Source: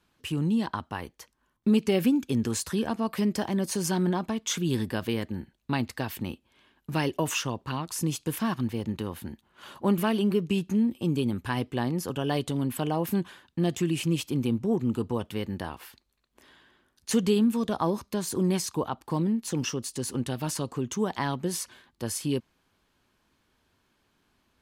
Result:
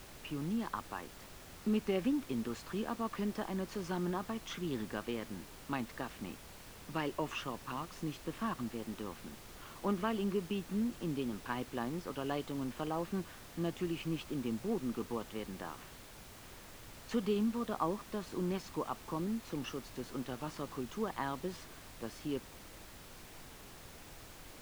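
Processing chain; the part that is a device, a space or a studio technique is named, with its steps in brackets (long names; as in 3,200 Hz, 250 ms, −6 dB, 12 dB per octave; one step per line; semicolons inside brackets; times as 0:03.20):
horn gramophone (band-pass filter 190–3,100 Hz; parametric band 1,200 Hz +7.5 dB 0.24 octaves; tape wow and flutter; pink noise bed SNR 13 dB)
level −8.5 dB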